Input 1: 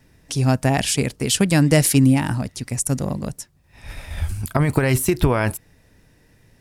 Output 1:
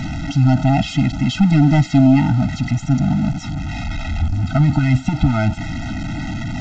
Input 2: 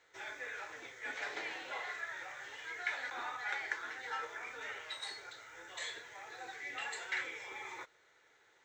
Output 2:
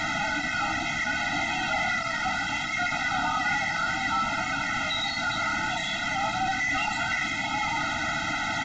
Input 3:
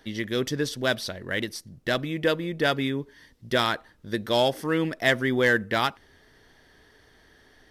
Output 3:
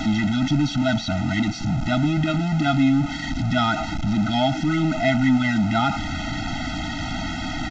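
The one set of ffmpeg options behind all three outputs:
ffmpeg -i in.wav -filter_complex "[0:a]aeval=exprs='val(0)+0.5*0.112*sgn(val(0))':channel_layout=same,acrossover=split=4100[link_01][link_02];[link_02]acompressor=threshold=-36dB:ratio=4:attack=1:release=60[link_03];[link_01][link_03]amix=inputs=2:normalize=0,equalizer=frequency=240:width=0.62:gain=5,aresample=16000,asoftclip=type=hard:threshold=-7.5dB,aresample=44100,afftfilt=real='re*eq(mod(floor(b*sr/1024/310),2),0)':imag='im*eq(mod(floor(b*sr/1024/310),2),0)':win_size=1024:overlap=0.75" out.wav

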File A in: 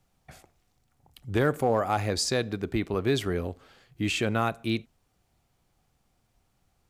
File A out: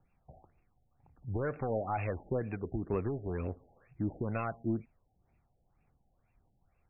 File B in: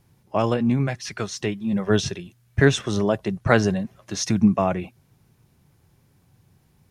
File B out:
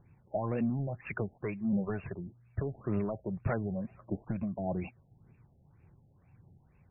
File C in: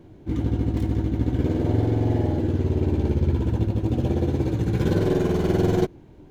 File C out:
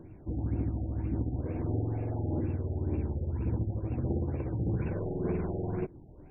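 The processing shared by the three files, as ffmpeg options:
ffmpeg -i in.wav -af "acompressor=threshold=-23dB:ratio=20,aexciter=amount=3.5:drive=4:freq=2600,asoftclip=type=tanh:threshold=-21.5dB,aphaser=in_gain=1:out_gain=1:delay=2:decay=0.36:speed=1.7:type=triangular,afftfilt=real='re*lt(b*sr/1024,830*pow(2800/830,0.5+0.5*sin(2*PI*2.1*pts/sr)))':imag='im*lt(b*sr/1024,830*pow(2800/830,0.5+0.5*sin(2*PI*2.1*pts/sr)))':win_size=1024:overlap=0.75,volume=-4dB" out.wav

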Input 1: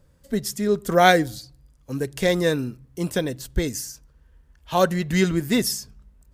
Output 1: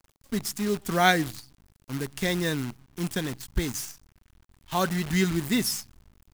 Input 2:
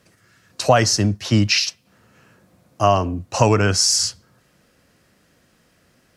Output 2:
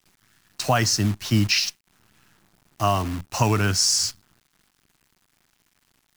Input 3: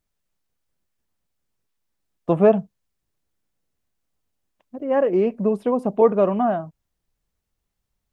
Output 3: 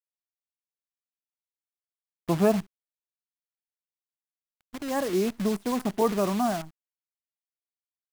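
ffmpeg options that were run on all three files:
ffmpeg -i in.wav -af "acrusher=bits=6:dc=4:mix=0:aa=0.000001,equalizer=frequency=520:width=2.1:gain=-9.5,volume=-3dB" out.wav

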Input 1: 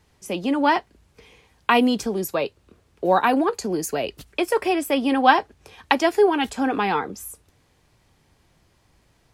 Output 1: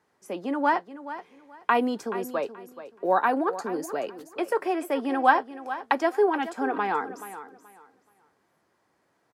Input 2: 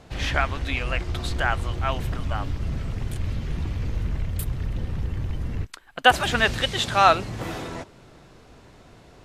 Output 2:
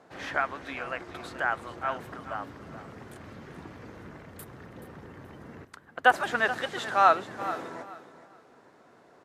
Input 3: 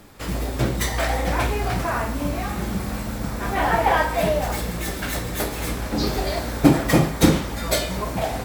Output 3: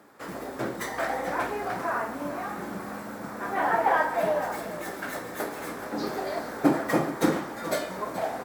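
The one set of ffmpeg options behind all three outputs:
ffmpeg -i in.wav -af "highpass=270,highshelf=frequency=2100:width_type=q:width=1.5:gain=-7,aecho=1:1:428|856|1284:0.211|0.0486|0.0112,volume=-4.5dB" out.wav

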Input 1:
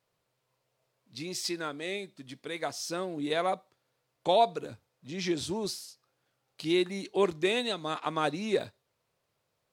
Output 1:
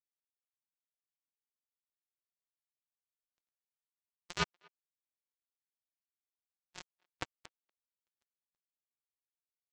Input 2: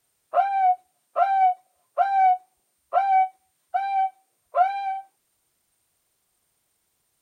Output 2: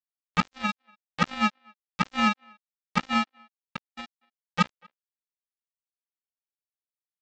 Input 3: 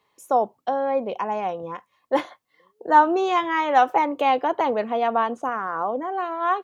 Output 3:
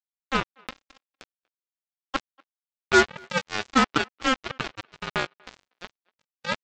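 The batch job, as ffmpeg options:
ffmpeg -i in.wav -filter_complex "[0:a]aeval=exprs='val(0)*sin(2*PI*530*n/s)':channel_layout=same,highpass=100,bandreject=frequency=50:width_type=h:width=6,bandreject=frequency=100:width_type=h:width=6,bandreject=frequency=150:width_type=h:width=6,bandreject=frequency=200:width_type=h:width=6,aresample=16000,acrusher=bits=2:mix=0:aa=0.5,aresample=44100,agate=range=-44dB:threshold=-49dB:ratio=16:detection=peak,asplit=2[link_01][link_02];[link_02]adelay=240,highpass=300,lowpass=3400,asoftclip=type=hard:threshold=-12dB,volume=-29dB[link_03];[link_01][link_03]amix=inputs=2:normalize=0" out.wav

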